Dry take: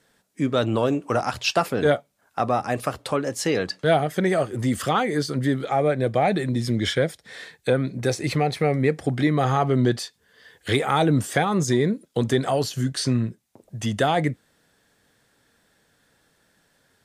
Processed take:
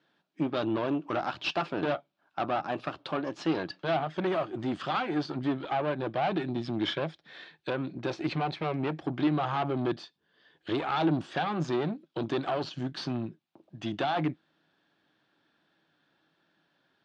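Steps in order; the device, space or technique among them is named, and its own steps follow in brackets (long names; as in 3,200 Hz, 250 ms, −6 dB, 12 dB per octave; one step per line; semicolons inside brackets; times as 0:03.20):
0:09.92–0:10.78: parametric band 2,000 Hz −5 dB 2.8 octaves
guitar amplifier (tube saturation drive 22 dB, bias 0.8; bass and treble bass −11 dB, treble +8 dB; loudspeaker in its box 88–3,400 Hz, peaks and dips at 160 Hz +10 dB, 320 Hz +9 dB, 470 Hz −9 dB, 2,000 Hz −7 dB)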